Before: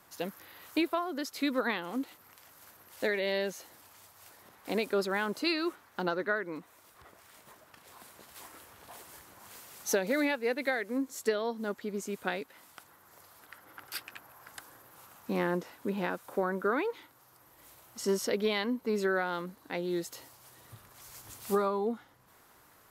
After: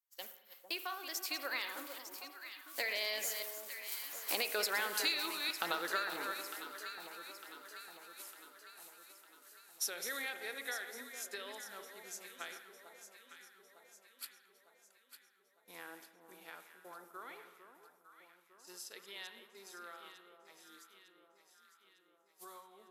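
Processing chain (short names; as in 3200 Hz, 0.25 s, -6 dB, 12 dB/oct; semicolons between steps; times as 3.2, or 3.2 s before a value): reverse delay 0.196 s, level -11 dB; Doppler pass-by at 4.91, 28 m/s, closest 14 m; expander -58 dBFS; HPF 570 Hz 6 dB/oct; tilt +4 dB/oct; compressor 6:1, threshold -43 dBFS, peak gain reduction 19.5 dB; echo with dull and thin repeats by turns 0.452 s, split 1100 Hz, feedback 73%, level -8 dB; spring tank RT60 1.2 s, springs 40/59 ms, chirp 45 ms, DRR 10.5 dB; gain +10 dB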